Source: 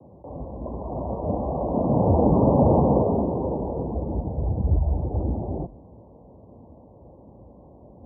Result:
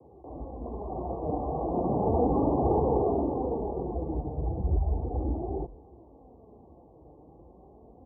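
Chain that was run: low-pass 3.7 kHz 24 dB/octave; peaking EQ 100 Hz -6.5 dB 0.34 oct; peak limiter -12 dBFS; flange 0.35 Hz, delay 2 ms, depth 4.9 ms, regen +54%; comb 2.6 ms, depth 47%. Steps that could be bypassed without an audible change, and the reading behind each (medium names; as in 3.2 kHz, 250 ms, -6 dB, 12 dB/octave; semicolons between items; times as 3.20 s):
low-pass 3.7 kHz: input has nothing above 1 kHz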